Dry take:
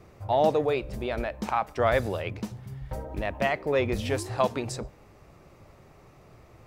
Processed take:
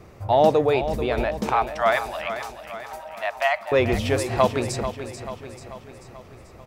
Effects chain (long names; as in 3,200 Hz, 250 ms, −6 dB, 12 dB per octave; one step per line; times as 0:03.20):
0:01.54–0:03.72: Butterworth high-pass 600 Hz 96 dB per octave
repeating echo 438 ms, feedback 54%, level −10.5 dB
level +5.5 dB